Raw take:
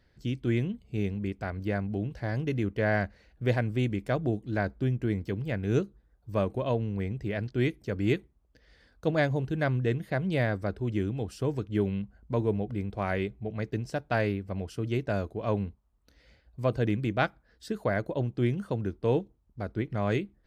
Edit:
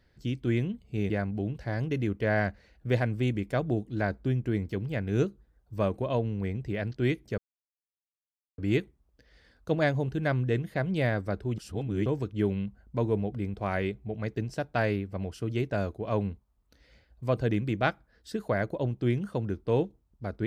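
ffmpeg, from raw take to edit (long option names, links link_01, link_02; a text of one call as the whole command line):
ffmpeg -i in.wav -filter_complex "[0:a]asplit=5[link_01][link_02][link_03][link_04][link_05];[link_01]atrim=end=1.102[link_06];[link_02]atrim=start=1.658:end=7.94,asetpts=PTS-STARTPTS,afade=type=out:start_time=6.278:duration=0.004:curve=hsin,apad=pad_dur=1.2[link_07];[link_03]atrim=start=7.94:end=10.942,asetpts=PTS-STARTPTS,afade=type=in:duration=0.004:curve=hsin[link_08];[link_04]atrim=start=10.938:end=11.422,asetpts=PTS-STARTPTS,areverse[link_09];[link_05]atrim=start=11.418[link_10];[link_07][link_08]concat=n=2:v=0:a=1[link_11];[link_06][link_11]acrossfade=duration=0.004:curve1=hsin:curve2=hsin[link_12];[link_12][link_09]acrossfade=duration=0.004:curve1=hsin:curve2=hsin[link_13];[link_13][link_10]acrossfade=duration=0.004:curve1=hsin:curve2=hsin" out.wav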